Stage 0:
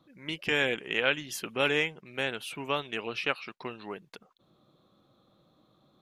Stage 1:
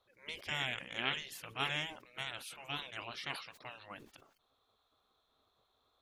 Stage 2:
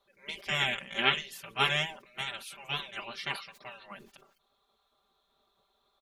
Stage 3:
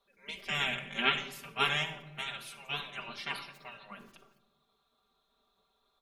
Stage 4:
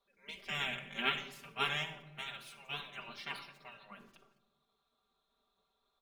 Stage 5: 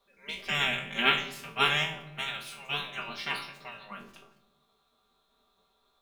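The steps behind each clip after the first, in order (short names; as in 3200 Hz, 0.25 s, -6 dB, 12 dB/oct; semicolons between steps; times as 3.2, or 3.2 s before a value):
spectral gate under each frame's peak -10 dB weak; sustainer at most 97 dB/s; gain -4.5 dB
comb 5.1 ms, depth 87%; upward expander 1.5:1, over -45 dBFS; gain +8 dB
shoebox room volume 3800 m³, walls furnished, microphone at 1.7 m; gain -3 dB
median filter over 3 samples; gain -5 dB
spectral trails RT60 0.32 s; gain +8 dB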